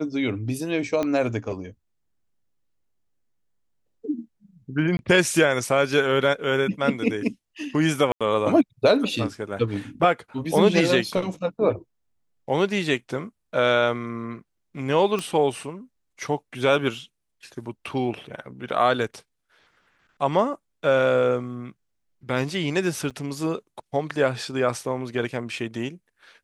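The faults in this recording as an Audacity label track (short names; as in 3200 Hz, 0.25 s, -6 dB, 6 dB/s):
1.030000	1.030000	pop -13 dBFS
4.970000	4.990000	gap 21 ms
8.120000	8.210000	gap 86 ms
15.190000	15.190000	pop -14 dBFS
23.100000	23.110000	gap 6.7 ms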